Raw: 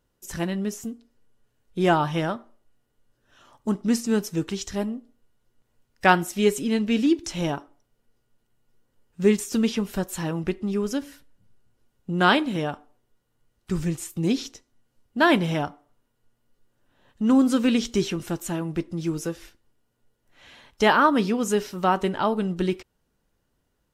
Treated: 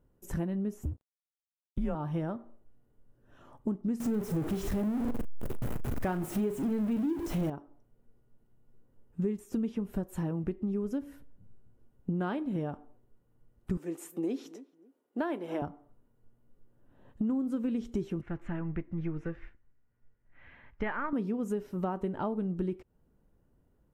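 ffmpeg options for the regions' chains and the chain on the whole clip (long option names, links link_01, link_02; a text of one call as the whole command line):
ffmpeg -i in.wav -filter_complex "[0:a]asettb=1/sr,asplit=3[link_01][link_02][link_03];[link_01]atrim=end=0.854[link_04];[link_02]atrim=start=0.85:end=1.95,asetpts=PTS-STARTPTS,afade=type=in:duration=0.004:curve=qsin,afade=type=out:start_time=1.096:duration=0.004:curve=qsin,afreqshift=-150,aeval=exprs='sgn(val(0))*max(abs(val(0))-0.00376,0)':channel_layout=same[link_05];[link_03]atrim=start=1.946[link_06];[link_04][link_05]acrossfade=duration=0.004:curve1=hsin:curve2=qsin[link_07];[link_07][link_06]acrossfade=duration=0.004:curve1=qsin:curve2=hsin,asettb=1/sr,asplit=3[link_08][link_09][link_10];[link_08]atrim=end=4.004[link_11];[link_09]atrim=start=4:end=7.5,asetpts=PTS-STARTPTS,afade=type=in:duration=0.004:curve=qsin,afade=type=out:start_time=3.496:duration=0.004:curve=qsin,aeval=exprs='val(0)+0.5*0.119*sgn(val(0))':channel_layout=same,asplit=2[link_12][link_13];[link_13]adelay=38,volume=-12.5dB[link_14];[link_12][link_14]amix=inputs=2:normalize=0,atrim=end_sample=154350[link_15];[link_10]atrim=start=7.496[link_16];[link_11][link_15]acrossfade=duration=0.004:curve1=hsin:curve2=qsin[link_17];[link_17][link_16]acrossfade=duration=0.004:curve1=qsin:curve2=hsin,asettb=1/sr,asplit=3[link_18][link_19][link_20];[link_18]atrim=end=13.774[link_21];[link_19]atrim=start=13.77:end=15.62,asetpts=PTS-STARTPTS,afade=type=in:duration=0.004:curve=qsin,afade=type=out:start_time=1.846:duration=0.004:curve=qsin,highpass=frequency=310:width=0.5412,highpass=frequency=310:width=1.3066,asplit=2[link_22][link_23];[link_23]adelay=275,lowpass=frequency=1200:poles=1,volume=-24dB,asplit=2[link_24][link_25];[link_25]adelay=275,lowpass=frequency=1200:poles=1,volume=0.25[link_26];[link_22][link_24][link_26]amix=inputs=3:normalize=0,atrim=end_sample=81585[link_27];[link_20]atrim=start=15.616[link_28];[link_21][link_27]acrossfade=duration=0.004:curve1=hsin:curve2=qsin[link_29];[link_29][link_28]acrossfade=duration=0.004:curve1=qsin:curve2=hsin,asettb=1/sr,asplit=3[link_30][link_31][link_32];[link_30]atrim=end=18.214[link_33];[link_31]atrim=start=18.21:end=21.13,asetpts=PTS-STARTPTS,afade=type=in:duration=0.004:curve=qsin,afade=type=out:start_time=2.916:duration=0.004:curve=qsin,aeval=exprs='if(lt(val(0),0),0.708*val(0),val(0))':channel_layout=same,lowpass=frequency=2000:width_type=q:width=2.7,equalizer=frequency=390:width=0.37:gain=-10[link_34];[link_32]atrim=start=21.126[link_35];[link_33][link_34]acrossfade=duration=0.004:curve1=hsin:curve2=qsin[link_36];[link_36][link_35]acrossfade=duration=0.004:curve1=qsin:curve2=hsin,tiltshelf=frequency=770:gain=6,acompressor=threshold=-30dB:ratio=6,equalizer=frequency=4800:width=0.71:gain=-10.5" out.wav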